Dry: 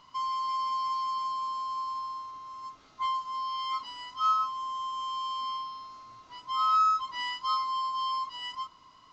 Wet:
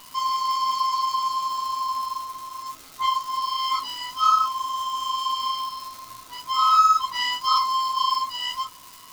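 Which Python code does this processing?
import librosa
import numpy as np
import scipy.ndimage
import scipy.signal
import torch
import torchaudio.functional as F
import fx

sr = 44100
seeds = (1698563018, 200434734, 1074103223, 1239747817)

y = fx.dmg_crackle(x, sr, seeds[0], per_s=480.0, level_db=-45.0)
y = fx.high_shelf(y, sr, hz=4300.0, db=11.0)
y = fx.chorus_voices(y, sr, voices=6, hz=1.1, base_ms=15, depth_ms=4.0, mix_pct=35)
y = y * 10.0 ** (9.0 / 20.0)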